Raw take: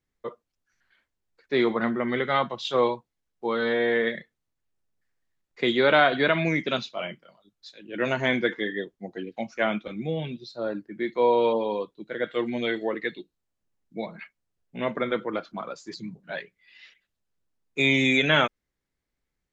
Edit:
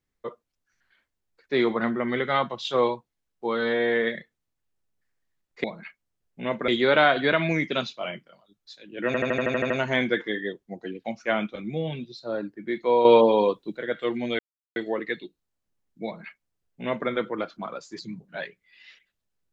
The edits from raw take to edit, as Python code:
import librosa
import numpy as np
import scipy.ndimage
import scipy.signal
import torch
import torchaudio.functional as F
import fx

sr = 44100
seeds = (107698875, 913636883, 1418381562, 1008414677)

y = fx.edit(x, sr, fx.stutter(start_s=8.02, slice_s=0.08, count=9),
    fx.clip_gain(start_s=11.37, length_s=0.72, db=7.5),
    fx.insert_silence(at_s=12.71, length_s=0.37),
    fx.duplicate(start_s=14.0, length_s=1.04, to_s=5.64), tone=tone)